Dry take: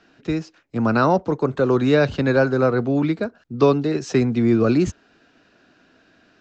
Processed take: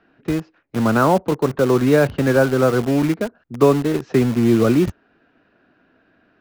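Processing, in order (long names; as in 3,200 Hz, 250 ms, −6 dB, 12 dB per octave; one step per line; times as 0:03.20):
low-pass filter 2,200 Hz 12 dB per octave
in parallel at −6 dB: bit reduction 4 bits
on the sum: level −1.5 dB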